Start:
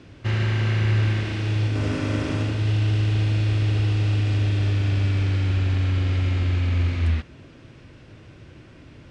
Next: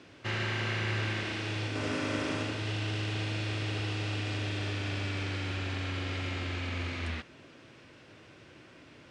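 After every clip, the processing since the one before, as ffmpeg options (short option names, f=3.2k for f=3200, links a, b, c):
-af "highpass=f=460:p=1,volume=-1.5dB"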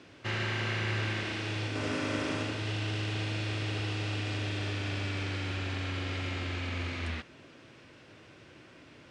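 -af anull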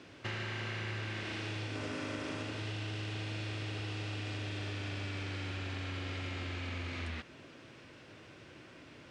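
-af "acompressor=threshold=-36dB:ratio=6"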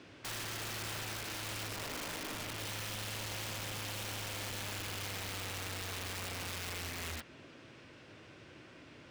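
-af "aeval=exprs='(mod(53.1*val(0)+1,2)-1)/53.1':c=same,volume=-1dB"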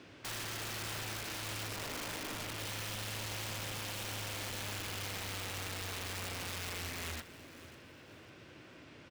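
-af "acrusher=bits=8:mode=log:mix=0:aa=0.000001,aecho=1:1:547|1094|1641:0.15|0.0554|0.0205"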